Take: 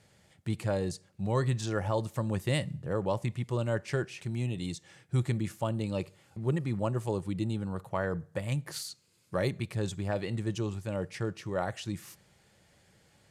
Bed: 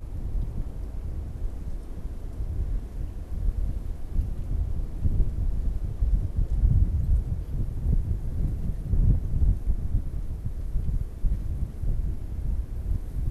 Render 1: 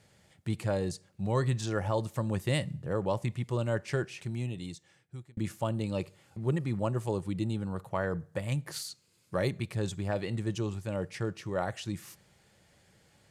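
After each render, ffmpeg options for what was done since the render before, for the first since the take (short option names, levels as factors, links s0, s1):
-filter_complex "[0:a]asplit=2[s0][s1];[s0]atrim=end=5.37,asetpts=PTS-STARTPTS,afade=t=out:st=4.16:d=1.21[s2];[s1]atrim=start=5.37,asetpts=PTS-STARTPTS,afade=t=in:d=0.004:c=hsin[s3];[s2][s3]concat=n=2:v=0:a=1"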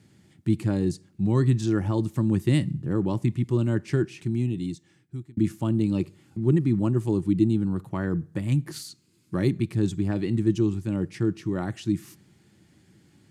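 -af "highpass=89,lowshelf=f=410:t=q:w=3:g=8"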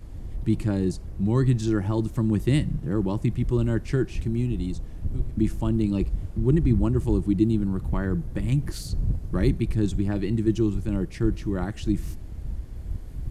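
-filter_complex "[1:a]volume=0.631[s0];[0:a][s0]amix=inputs=2:normalize=0"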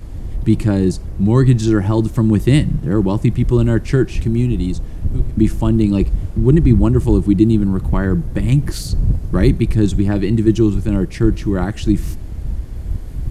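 -af "volume=2.99,alimiter=limit=0.891:level=0:latency=1"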